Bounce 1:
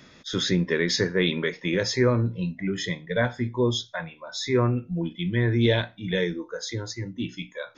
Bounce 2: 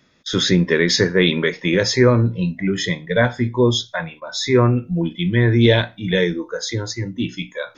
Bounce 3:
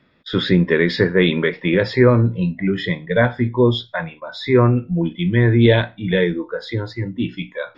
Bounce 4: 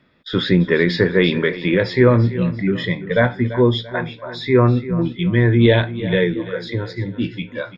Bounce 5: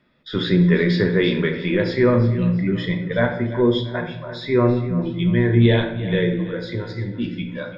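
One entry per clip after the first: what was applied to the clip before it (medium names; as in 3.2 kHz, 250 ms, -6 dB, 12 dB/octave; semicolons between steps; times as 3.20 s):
gate -47 dBFS, range -15 dB; trim +7.5 dB
boxcar filter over 7 samples; trim +1 dB
feedback delay 340 ms, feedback 41%, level -14.5 dB
reverberation RT60 0.70 s, pre-delay 5 ms, DRR 4.5 dB; trim -5 dB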